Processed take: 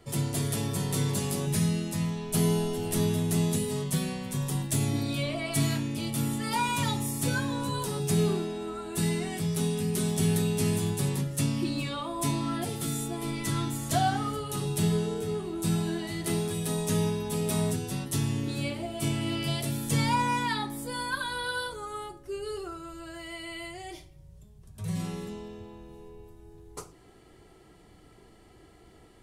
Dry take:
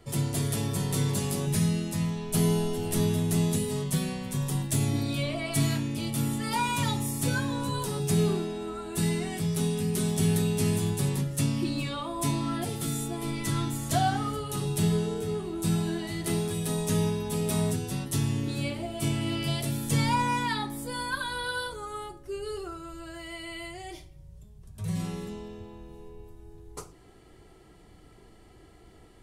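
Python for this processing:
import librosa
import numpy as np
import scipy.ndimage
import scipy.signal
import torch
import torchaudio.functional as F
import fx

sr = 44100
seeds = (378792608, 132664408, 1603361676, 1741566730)

y = fx.low_shelf(x, sr, hz=74.0, db=-5.5)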